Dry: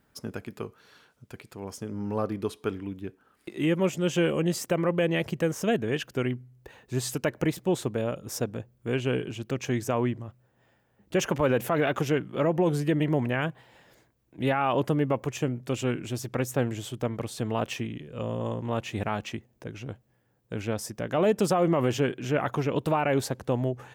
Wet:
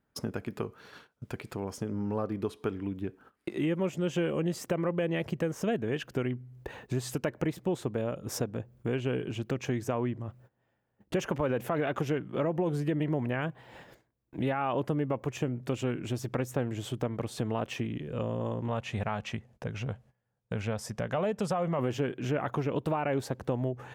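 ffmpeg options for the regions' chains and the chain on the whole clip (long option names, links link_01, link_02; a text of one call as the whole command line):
ffmpeg -i in.wav -filter_complex "[0:a]asettb=1/sr,asplit=3[link_01][link_02][link_03];[link_01]atrim=end=18.684[link_04];[link_02]atrim=start=18.68:end=21.79,asetpts=PTS-STARTPTS,afade=type=in:duration=0.004:curve=qsin,afade=type=out:start_time=3.106:duration=0.004:curve=qsin,lowpass=11000,equalizer=frequency=320:width=2.8:gain=-13[link_05];[link_03]atrim=start=21.786[link_06];[link_04][link_05]acrossfade=duration=0.004:curve1=hsin:curve2=qsin[link_07];[link_07][link_06]acrossfade=duration=0.004:curve1=qsin:curve2=hsin,highshelf=frequency=3000:gain=-7.5,agate=range=-18dB:threshold=-58dB:ratio=16:detection=peak,acompressor=threshold=-42dB:ratio=2.5,volume=8.5dB" out.wav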